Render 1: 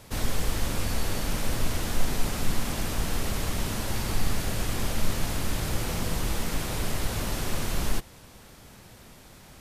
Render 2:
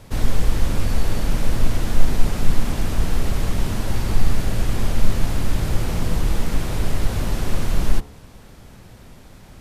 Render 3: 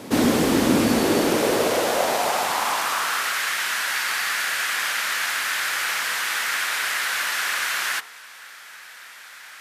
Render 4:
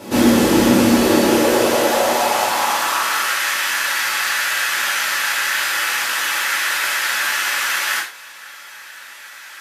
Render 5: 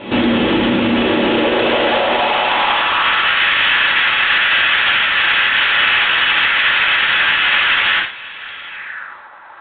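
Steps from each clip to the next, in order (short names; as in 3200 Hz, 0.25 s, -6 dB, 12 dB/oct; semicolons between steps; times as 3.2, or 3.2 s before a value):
tilt -1.5 dB/oct; de-hum 71.25 Hz, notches 19; gain +3 dB
high-pass sweep 270 Hz -> 1600 Hz, 0.91–3.43; gain +8.5 dB
non-linear reverb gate 0.13 s falling, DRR -5.5 dB; gain -1.5 dB
limiter -11 dBFS, peak gain reduction 9.5 dB; low-pass sweep 3100 Hz -> 920 Hz, 8.67–9.28; gain +4.5 dB; G.726 24 kbps 8000 Hz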